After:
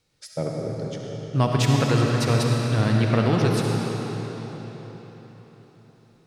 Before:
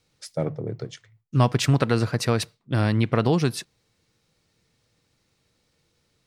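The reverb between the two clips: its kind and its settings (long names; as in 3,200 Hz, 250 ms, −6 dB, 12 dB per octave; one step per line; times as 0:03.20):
comb and all-pass reverb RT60 4.5 s, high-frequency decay 0.85×, pre-delay 25 ms, DRR −1.5 dB
level −2 dB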